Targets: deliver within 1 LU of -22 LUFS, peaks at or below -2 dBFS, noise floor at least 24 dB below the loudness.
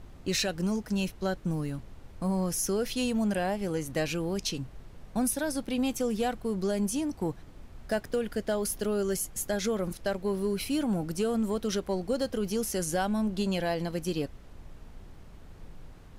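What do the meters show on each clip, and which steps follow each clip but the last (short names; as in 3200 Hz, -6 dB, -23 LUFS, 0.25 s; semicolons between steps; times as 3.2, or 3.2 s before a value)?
noise floor -50 dBFS; noise floor target -55 dBFS; loudness -30.5 LUFS; peak -18.0 dBFS; loudness target -22.0 LUFS
-> noise print and reduce 6 dB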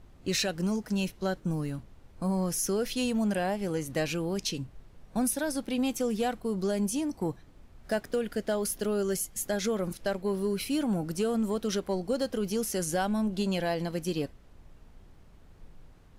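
noise floor -55 dBFS; loudness -30.5 LUFS; peak -18.5 dBFS; loudness target -22.0 LUFS
-> gain +8.5 dB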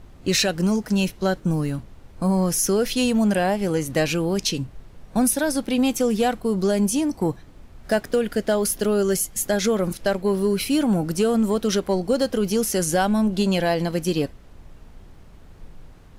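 loudness -22.0 LUFS; peak -10.0 dBFS; noise floor -46 dBFS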